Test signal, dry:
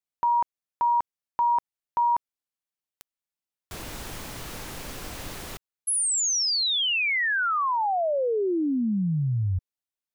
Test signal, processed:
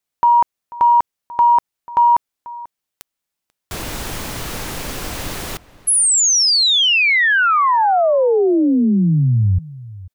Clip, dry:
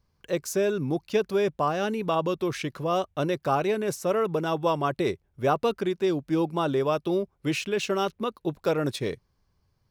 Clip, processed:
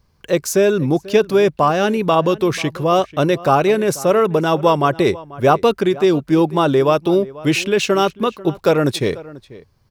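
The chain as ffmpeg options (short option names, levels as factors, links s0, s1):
-filter_complex "[0:a]asplit=2[s0][s1];[s1]adelay=489.8,volume=0.112,highshelf=f=4000:g=-11[s2];[s0][s2]amix=inputs=2:normalize=0,acontrast=29,volume=1.88"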